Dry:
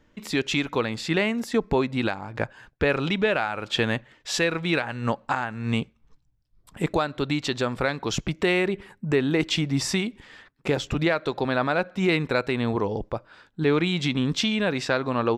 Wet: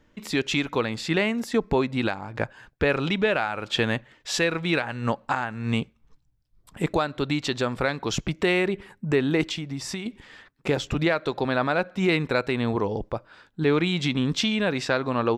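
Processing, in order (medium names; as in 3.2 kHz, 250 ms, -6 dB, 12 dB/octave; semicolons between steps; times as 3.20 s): 9.47–10.06 s: compression 4:1, threshold -30 dBFS, peak gain reduction 9.5 dB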